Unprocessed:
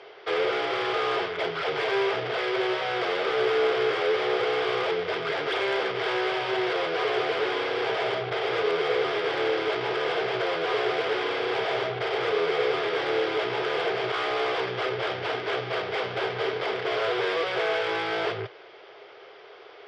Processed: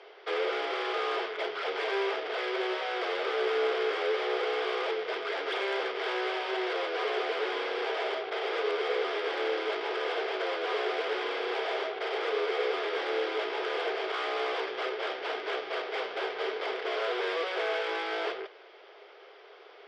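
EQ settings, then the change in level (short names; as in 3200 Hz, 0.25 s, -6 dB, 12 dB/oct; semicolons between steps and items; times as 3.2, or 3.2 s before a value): HPF 320 Hz 24 dB/oct; -4.5 dB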